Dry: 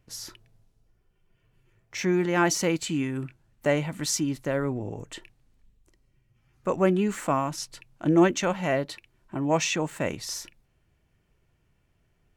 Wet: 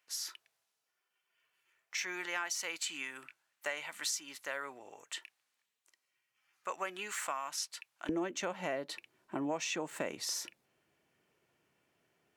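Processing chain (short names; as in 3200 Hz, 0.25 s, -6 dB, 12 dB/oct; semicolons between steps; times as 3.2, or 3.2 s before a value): HPF 1200 Hz 12 dB/oct, from 8.09 s 290 Hz; compressor 8:1, threshold -33 dBFS, peak gain reduction 16.5 dB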